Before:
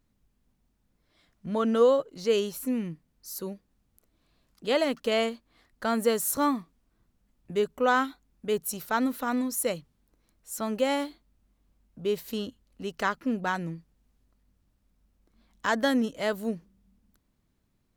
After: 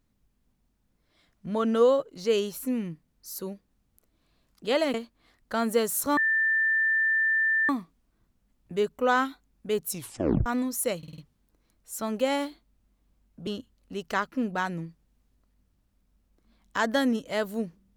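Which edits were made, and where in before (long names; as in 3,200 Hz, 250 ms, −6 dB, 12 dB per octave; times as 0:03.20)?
0:04.94–0:05.25: remove
0:06.48: insert tone 1,780 Hz −21 dBFS 1.52 s
0:08.69: tape stop 0.56 s
0:09.77: stutter 0.05 s, 5 plays
0:12.06–0:12.36: remove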